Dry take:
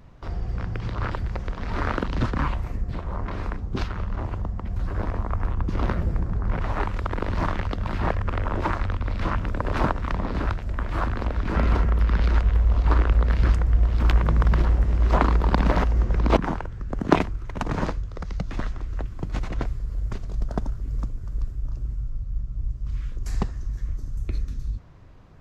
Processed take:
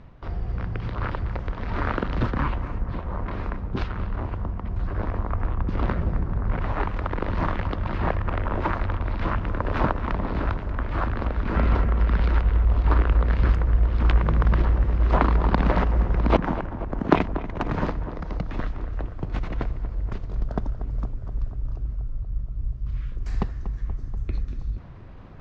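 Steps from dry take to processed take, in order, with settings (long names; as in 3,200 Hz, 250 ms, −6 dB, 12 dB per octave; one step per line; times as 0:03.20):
low-pass filter 3,700 Hz 12 dB per octave
reversed playback
upward compression, threshold −35 dBFS
reversed playback
tape delay 239 ms, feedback 80%, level −11 dB, low-pass 1,800 Hz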